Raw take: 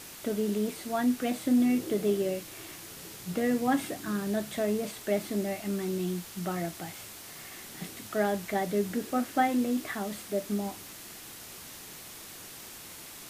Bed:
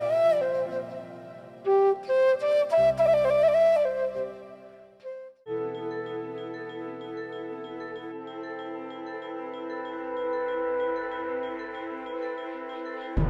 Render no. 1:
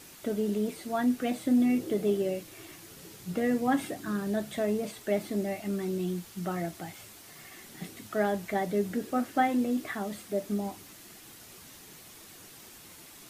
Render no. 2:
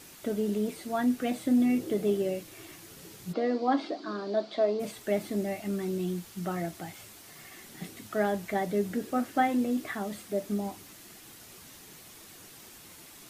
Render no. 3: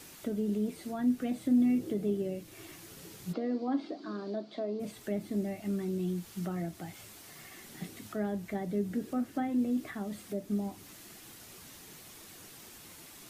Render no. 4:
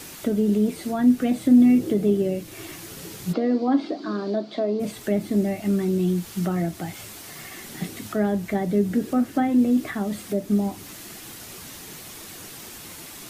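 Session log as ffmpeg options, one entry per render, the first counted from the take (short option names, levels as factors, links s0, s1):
-af "afftdn=nr=6:nf=-46"
-filter_complex "[0:a]asplit=3[s0][s1][s2];[s0]afade=t=out:st=3.32:d=0.02[s3];[s1]highpass=f=260:w=0.5412,highpass=f=260:w=1.3066,equalizer=f=330:t=q:w=4:g=4,equalizer=f=640:t=q:w=4:g=6,equalizer=f=1100:t=q:w=4:g=4,equalizer=f=1800:t=q:w=4:g=-7,equalizer=f=2700:t=q:w=4:g=-5,equalizer=f=4500:t=q:w=4:g=10,lowpass=f=4800:w=0.5412,lowpass=f=4800:w=1.3066,afade=t=in:st=3.32:d=0.02,afade=t=out:st=4.79:d=0.02[s4];[s2]afade=t=in:st=4.79:d=0.02[s5];[s3][s4][s5]amix=inputs=3:normalize=0"
-filter_complex "[0:a]acrossover=split=330[s0][s1];[s1]acompressor=threshold=0.00398:ratio=2[s2];[s0][s2]amix=inputs=2:normalize=0"
-af "volume=3.55"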